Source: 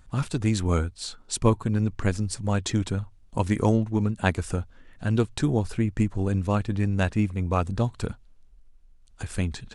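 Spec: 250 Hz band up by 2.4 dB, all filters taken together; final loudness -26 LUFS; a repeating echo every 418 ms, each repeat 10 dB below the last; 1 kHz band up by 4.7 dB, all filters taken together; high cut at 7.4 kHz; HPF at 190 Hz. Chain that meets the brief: high-pass 190 Hz; low-pass 7.4 kHz; peaking EQ 250 Hz +5 dB; peaking EQ 1 kHz +5.5 dB; feedback delay 418 ms, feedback 32%, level -10 dB

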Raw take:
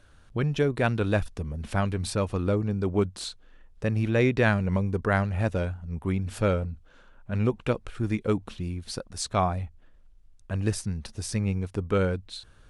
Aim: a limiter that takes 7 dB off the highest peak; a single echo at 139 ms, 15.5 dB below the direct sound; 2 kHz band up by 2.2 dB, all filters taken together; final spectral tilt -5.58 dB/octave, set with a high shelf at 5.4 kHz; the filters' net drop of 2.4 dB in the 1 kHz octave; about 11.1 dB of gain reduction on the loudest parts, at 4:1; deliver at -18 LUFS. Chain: peaking EQ 1 kHz -5 dB; peaking EQ 2 kHz +5.5 dB; treble shelf 5.4 kHz -5.5 dB; compression 4:1, threshold -32 dBFS; peak limiter -27 dBFS; delay 139 ms -15.5 dB; trim +20 dB

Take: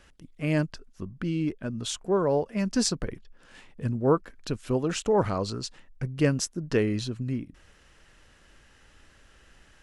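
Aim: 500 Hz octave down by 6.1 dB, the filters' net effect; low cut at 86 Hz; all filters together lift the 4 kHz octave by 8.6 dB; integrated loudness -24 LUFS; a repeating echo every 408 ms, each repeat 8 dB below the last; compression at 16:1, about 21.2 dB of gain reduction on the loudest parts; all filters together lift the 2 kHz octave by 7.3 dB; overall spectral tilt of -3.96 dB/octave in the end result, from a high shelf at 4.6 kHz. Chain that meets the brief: high-pass 86 Hz; peaking EQ 500 Hz -8 dB; peaking EQ 2 kHz +7 dB; peaking EQ 4 kHz +6.5 dB; treble shelf 4.6 kHz +5 dB; compression 16:1, threshold -37 dBFS; feedback delay 408 ms, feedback 40%, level -8 dB; trim +18 dB

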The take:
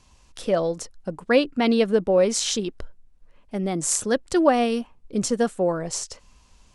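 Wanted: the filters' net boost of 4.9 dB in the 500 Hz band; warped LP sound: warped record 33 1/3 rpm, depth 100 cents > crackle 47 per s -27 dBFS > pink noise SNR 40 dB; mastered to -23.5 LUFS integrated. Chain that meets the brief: peaking EQ 500 Hz +5.5 dB; warped record 33 1/3 rpm, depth 100 cents; crackle 47 per s -27 dBFS; pink noise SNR 40 dB; trim -4 dB

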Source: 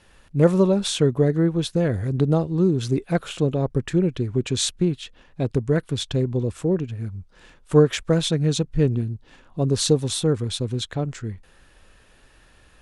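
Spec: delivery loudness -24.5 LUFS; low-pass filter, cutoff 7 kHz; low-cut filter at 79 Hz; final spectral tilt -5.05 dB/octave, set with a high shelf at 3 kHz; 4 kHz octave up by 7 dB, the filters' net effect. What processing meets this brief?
high-pass 79 Hz; low-pass 7 kHz; treble shelf 3 kHz +5.5 dB; peaking EQ 4 kHz +4.5 dB; trim -3 dB

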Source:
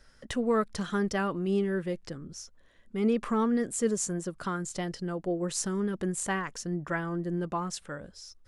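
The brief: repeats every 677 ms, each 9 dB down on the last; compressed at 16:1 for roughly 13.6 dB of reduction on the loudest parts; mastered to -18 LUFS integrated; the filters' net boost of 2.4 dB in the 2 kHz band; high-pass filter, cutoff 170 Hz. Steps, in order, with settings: high-pass 170 Hz; peaking EQ 2 kHz +3 dB; compression 16:1, threshold -35 dBFS; feedback delay 677 ms, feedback 35%, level -9 dB; trim +21.5 dB

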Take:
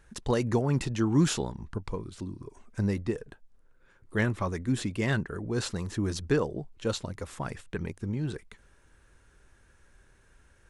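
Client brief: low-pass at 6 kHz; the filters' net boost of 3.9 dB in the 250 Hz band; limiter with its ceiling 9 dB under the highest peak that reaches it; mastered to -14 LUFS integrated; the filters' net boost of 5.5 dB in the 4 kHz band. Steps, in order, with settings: low-pass 6 kHz; peaking EQ 250 Hz +5 dB; peaking EQ 4 kHz +7.5 dB; trim +16.5 dB; peak limiter -2 dBFS

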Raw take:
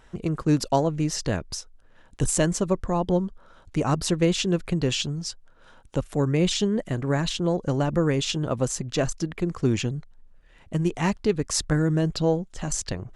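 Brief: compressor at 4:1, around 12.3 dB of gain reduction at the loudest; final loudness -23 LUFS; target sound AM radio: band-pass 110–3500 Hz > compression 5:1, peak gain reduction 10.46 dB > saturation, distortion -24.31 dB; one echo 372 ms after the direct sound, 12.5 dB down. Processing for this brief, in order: compression 4:1, threshold -32 dBFS; band-pass 110–3500 Hz; delay 372 ms -12.5 dB; compression 5:1, threshold -39 dBFS; saturation -30 dBFS; trim +21 dB

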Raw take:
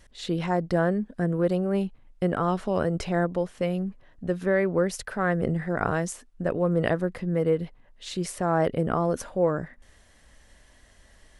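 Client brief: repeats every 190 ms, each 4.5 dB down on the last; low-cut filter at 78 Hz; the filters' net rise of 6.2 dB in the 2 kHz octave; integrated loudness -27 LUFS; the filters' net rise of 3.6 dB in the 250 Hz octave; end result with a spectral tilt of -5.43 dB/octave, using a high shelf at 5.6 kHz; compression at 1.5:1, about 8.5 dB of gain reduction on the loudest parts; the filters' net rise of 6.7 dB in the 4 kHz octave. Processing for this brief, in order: high-pass 78 Hz; peaking EQ 250 Hz +6.5 dB; peaking EQ 2 kHz +6.5 dB; peaking EQ 4 kHz +3.5 dB; treble shelf 5.6 kHz +7.5 dB; compression 1.5:1, threshold -41 dBFS; feedback delay 190 ms, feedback 60%, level -4.5 dB; trim +3 dB

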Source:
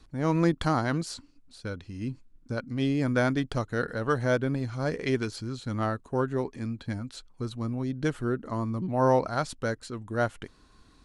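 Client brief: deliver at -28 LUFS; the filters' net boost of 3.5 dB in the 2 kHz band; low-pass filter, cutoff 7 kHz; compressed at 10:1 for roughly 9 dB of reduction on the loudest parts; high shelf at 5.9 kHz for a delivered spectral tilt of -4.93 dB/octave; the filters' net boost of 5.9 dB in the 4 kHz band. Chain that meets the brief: low-pass 7 kHz; peaking EQ 2 kHz +4 dB; peaking EQ 4 kHz +8.5 dB; treble shelf 5.9 kHz -6 dB; compression 10:1, threshold -27 dBFS; trim +5.5 dB

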